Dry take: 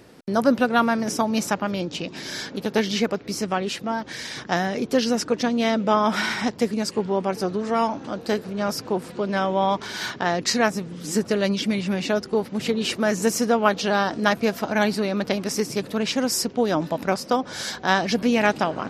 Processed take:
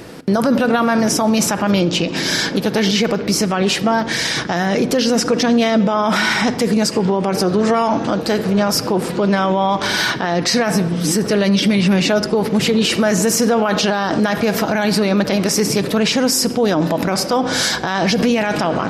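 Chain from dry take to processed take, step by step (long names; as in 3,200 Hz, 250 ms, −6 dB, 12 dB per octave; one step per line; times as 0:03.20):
0:09.82–0:11.90: notch filter 7,000 Hz, Q 7.9
rectangular room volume 3,200 cubic metres, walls furnished, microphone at 0.68 metres
boost into a limiter +20.5 dB
level −6.5 dB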